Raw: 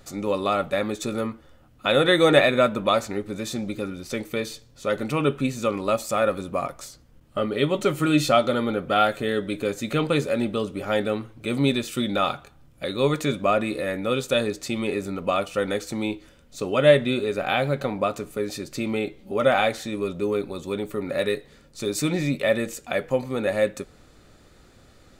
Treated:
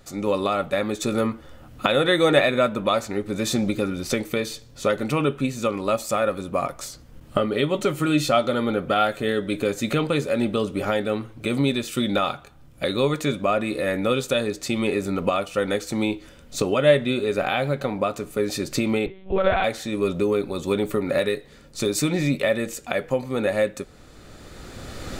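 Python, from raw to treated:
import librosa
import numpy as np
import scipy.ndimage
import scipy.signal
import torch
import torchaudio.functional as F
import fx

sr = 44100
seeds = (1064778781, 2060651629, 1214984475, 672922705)

y = fx.recorder_agc(x, sr, target_db=-11.5, rise_db_per_s=14.0, max_gain_db=30)
y = fx.lpc_monotone(y, sr, seeds[0], pitch_hz=190.0, order=10, at=(19.06, 19.64))
y = F.gain(torch.from_numpy(y), -1.0).numpy()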